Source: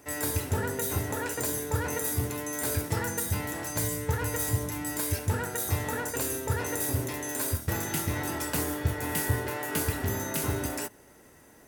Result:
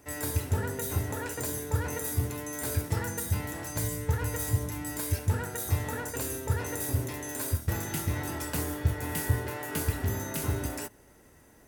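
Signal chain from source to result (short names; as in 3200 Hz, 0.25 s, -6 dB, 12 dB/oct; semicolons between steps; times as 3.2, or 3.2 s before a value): low shelf 99 Hz +10 dB; gain -3.5 dB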